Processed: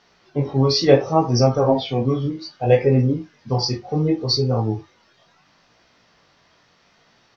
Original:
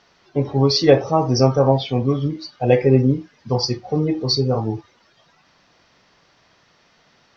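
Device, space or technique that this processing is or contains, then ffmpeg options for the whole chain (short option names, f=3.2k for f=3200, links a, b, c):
double-tracked vocal: -filter_complex "[0:a]asplit=2[a][b];[b]adelay=34,volume=-13dB[c];[a][c]amix=inputs=2:normalize=0,flanger=delay=16.5:depth=6.9:speed=0.68,volume=2dB"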